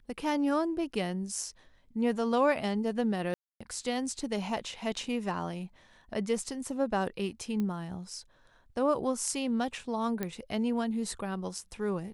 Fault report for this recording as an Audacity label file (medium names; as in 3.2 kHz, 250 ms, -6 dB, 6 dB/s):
3.340000	3.600000	dropout 265 ms
7.600000	7.600000	pop -22 dBFS
10.230000	10.230000	pop -18 dBFS